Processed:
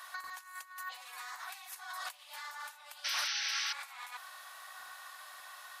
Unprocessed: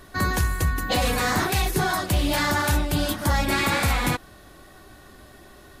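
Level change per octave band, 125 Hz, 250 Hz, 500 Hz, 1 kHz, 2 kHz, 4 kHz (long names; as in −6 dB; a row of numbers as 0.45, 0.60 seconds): below −40 dB, below −40 dB, −33.0 dB, −18.0 dB, −14.5 dB, −9.5 dB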